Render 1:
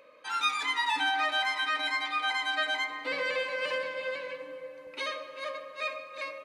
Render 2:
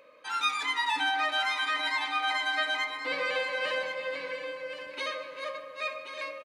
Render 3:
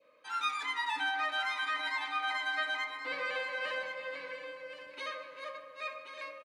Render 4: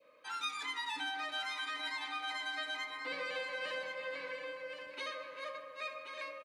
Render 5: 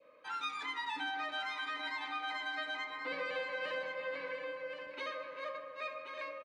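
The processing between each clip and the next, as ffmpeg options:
-af "aecho=1:1:1079:0.355"
-af "adynamicequalizer=threshold=0.01:dfrequency=1400:dqfactor=1.1:tfrequency=1400:tqfactor=1.1:attack=5:release=100:ratio=0.375:range=2.5:mode=boostabove:tftype=bell,volume=-8dB"
-filter_complex "[0:a]acrossover=split=500|3000[a][b][c];[b]acompressor=threshold=-42dB:ratio=6[d];[a][d][c]amix=inputs=3:normalize=0,volume=1dB"
-af "aemphasis=mode=reproduction:type=75fm,volume=2dB"

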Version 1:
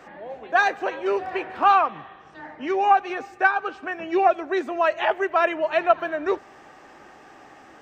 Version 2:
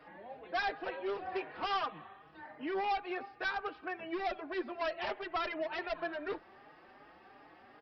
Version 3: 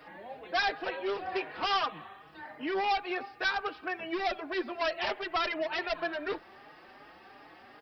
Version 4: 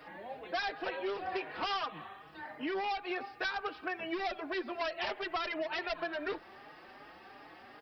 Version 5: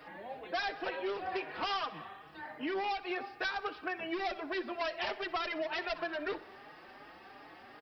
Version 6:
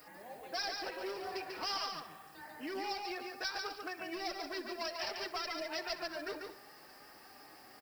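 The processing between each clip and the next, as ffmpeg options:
-filter_complex "[0:a]aresample=11025,volume=22dB,asoftclip=hard,volume=-22dB,aresample=44100,asplit=2[a][b];[b]adelay=4.4,afreqshift=2.7[c];[a][c]amix=inputs=2:normalize=1,volume=-7dB"
-af "highshelf=f=3.3k:g=10,volume=3.5dB"
-af "acompressor=threshold=-32dB:ratio=6"
-af "aecho=1:1:62|124|186|248|310:0.112|0.0673|0.0404|0.0242|0.0145"
-af "aexciter=amount=11:drive=5:freq=5.1k,aecho=1:1:143|210:0.596|0.141,acrusher=bits=6:mode=log:mix=0:aa=0.000001,volume=-6dB"

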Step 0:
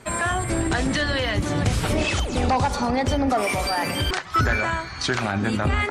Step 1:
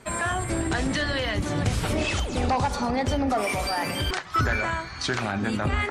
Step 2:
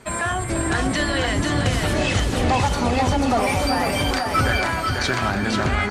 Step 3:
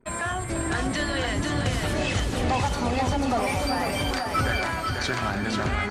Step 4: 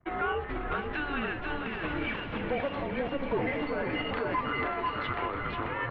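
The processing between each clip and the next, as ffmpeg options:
-af "flanger=delay=4.3:depth=9.3:regen=-86:speed=0.73:shape=sinusoidal,volume=1.5dB"
-af "aecho=1:1:490|882|1196|1446|1647:0.631|0.398|0.251|0.158|0.1,volume=3dB"
-af "anlmdn=0.158,volume=-5dB"
-af "alimiter=limit=-19.5dB:level=0:latency=1:release=139,highpass=f=350:t=q:w=0.5412,highpass=f=350:t=q:w=1.307,lowpass=f=3.2k:t=q:w=0.5176,lowpass=f=3.2k:t=q:w=0.7071,lowpass=f=3.2k:t=q:w=1.932,afreqshift=-290"

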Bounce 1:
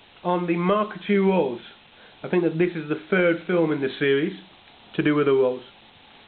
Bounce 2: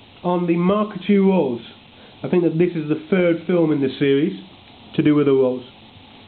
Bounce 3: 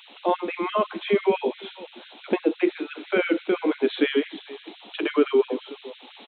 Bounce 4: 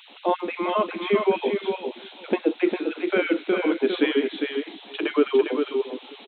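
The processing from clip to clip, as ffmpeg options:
-filter_complex "[0:a]equalizer=f=100:t=o:w=0.67:g=11,equalizer=f=250:t=o:w=0.67:g=7,equalizer=f=1.6k:t=o:w=0.67:g=-8,asplit=2[a][b];[b]acompressor=threshold=-27dB:ratio=6,volume=-1.5dB[c];[a][c]amix=inputs=2:normalize=0"
-af "aecho=1:1:444:0.1,afftfilt=real='re*gte(b*sr/1024,210*pow(1500/210,0.5+0.5*sin(2*PI*5.9*pts/sr)))':imag='im*gte(b*sr/1024,210*pow(1500/210,0.5+0.5*sin(2*PI*5.9*pts/sr)))':win_size=1024:overlap=0.75"
-af "aecho=1:1:403:0.531"

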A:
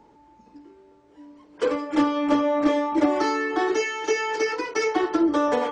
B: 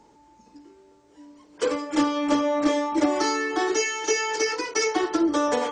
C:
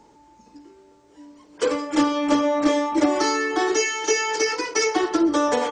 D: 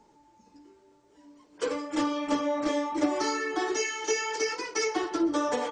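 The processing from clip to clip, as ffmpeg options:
-af "equalizer=f=7.2k:t=o:w=1.5:g=12,volume=-1.5dB"
-af "aecho=1:1:125:0.0891,volume=2.5dB"
-af "flanger=delay=4.4:depth=7.4:regen=-44:speed=0.86:shape=triangular,volume=-3.5dB"

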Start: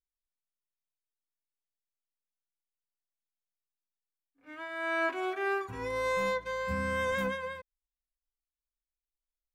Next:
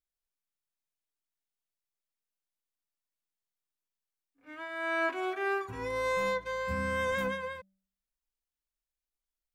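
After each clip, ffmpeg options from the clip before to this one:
-af "bandreject=f=192.3:t=h:w=4,bandreject=f=384.6:t=h:w=4,bandreject=f=576.9:t=h:w=4,bandreject=f=769.2:t=h:w=4"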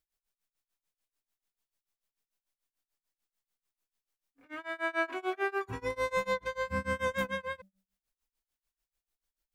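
-filter_complex "[0:a]asplit=2[a][b];[b]acompressor=threshold=-40dB:ratio=6,volume=2.5dB[c];[a][c]amix=inputs=2:normalize=0,tremolo=f=6.8:d=0.97"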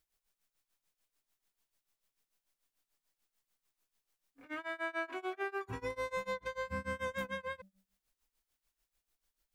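-af "acompressor=threshold=-45dB:ratio=2.5,volume=4.5dB"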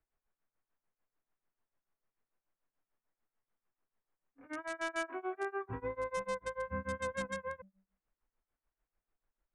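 -filter_complex "[0:a]acrossover=split=170|430|2000[a][b][c][d];[d]acrusher=bits=6:mix=0:aa=0.000001[e];[a][b][c][e]amix=inputs=4:normalize=0,aresample=22050,aresample=44100,volume=1dB"

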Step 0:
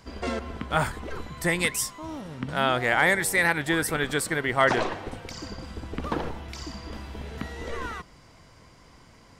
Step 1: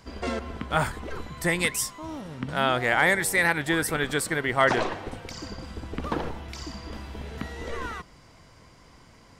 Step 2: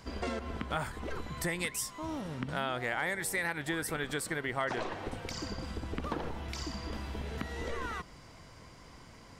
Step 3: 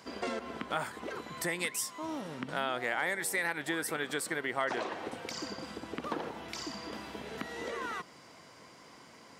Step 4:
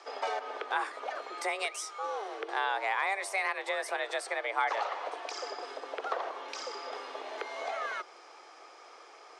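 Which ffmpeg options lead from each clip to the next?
-af anull
-af "acompressor=threshold=-34dB:ratio=3"
-af "highpass=230,volume=1dB"
-af "afreqshift=200,highpass=140,equalizer=f=280:t=q:w=4:g=-4,equalizer=f=790:t=q:w=4:g=6,equalizer=f=1.2k:t=q:w=4:g=4,equalizer=f=7.6k:t=q:w=4:g=-5,lowpass=f=8.4k:w=0.5412,lowpass=f=8.4k:w=1.3066"

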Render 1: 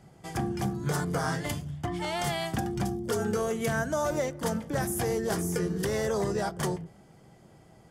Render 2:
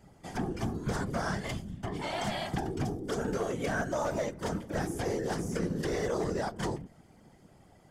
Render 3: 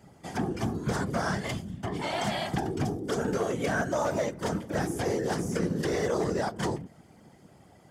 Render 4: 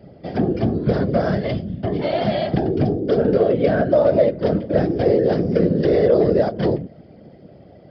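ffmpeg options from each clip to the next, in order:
-filter_complex "[0:a]acrossover=split=7700[a][b];[b]acompressor=threshold=-56dB:ratio=4:attack=1:release=60[c];[a][c]amix=inputs=2:normalize=0,afftfilt=real='hypot(re,im)*cos(2*PI*random(0))':imag='hypot(re,im)*sin(2*PI*random(1))':win_size=512:overlap=0.75,volume=27dB,asoftclip=hard,volume=-27dB,volume=3dB"
-af "highpass=75,volume=3.5dB"
-af "lowshelf=f=740:t=q:w=3:g=7,aresample=11025,aresample=44100,volume=3dB"

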